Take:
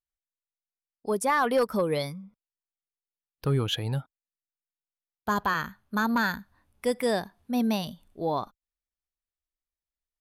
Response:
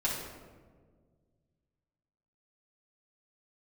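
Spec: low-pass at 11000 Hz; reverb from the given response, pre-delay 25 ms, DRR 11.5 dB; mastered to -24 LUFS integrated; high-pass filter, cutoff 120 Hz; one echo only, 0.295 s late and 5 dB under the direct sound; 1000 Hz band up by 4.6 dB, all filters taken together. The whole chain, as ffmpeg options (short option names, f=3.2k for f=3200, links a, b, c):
-filter_complex "[0:a]highpass=120,lowpass=11k,equalizer=f=1k:t=o:g=5.5,aecho=1:1:295:0.562,asplit=2[a][b];[1:a]atrim=start_sample=2205,adelay=25[c];[b][c]afir=irnorm=-1:irlink=0,volume=-19dB[d];[a][d]amix=inputs=2:normalize=0,volume=1.5dB"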